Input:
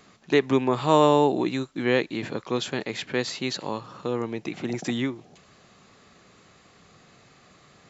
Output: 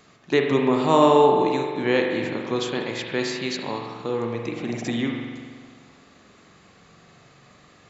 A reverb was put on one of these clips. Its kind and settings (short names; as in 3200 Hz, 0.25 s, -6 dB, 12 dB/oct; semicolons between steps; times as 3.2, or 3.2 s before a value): spring tank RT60 1.7 s, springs 43 ms, chirp 35 ms, DRR 1.5 dB